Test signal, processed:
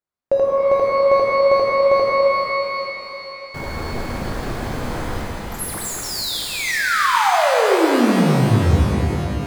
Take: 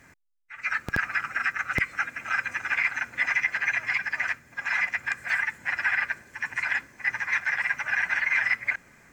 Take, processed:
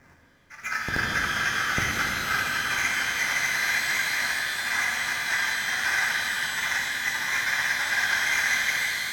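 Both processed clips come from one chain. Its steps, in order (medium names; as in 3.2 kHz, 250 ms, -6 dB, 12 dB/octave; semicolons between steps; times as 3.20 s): median filter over 15 samples; pitch-shifted reverb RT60 3.8 s, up +12 st, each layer -8 dB, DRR -3.5 dB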